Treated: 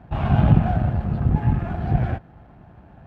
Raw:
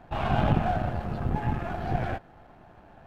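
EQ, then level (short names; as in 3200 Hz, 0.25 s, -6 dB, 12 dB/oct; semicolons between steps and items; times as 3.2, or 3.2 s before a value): HPF 44 Hz; tone controls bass +12 dB, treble -7 dB; bell 80 Hz -2 dB; 0.0 dB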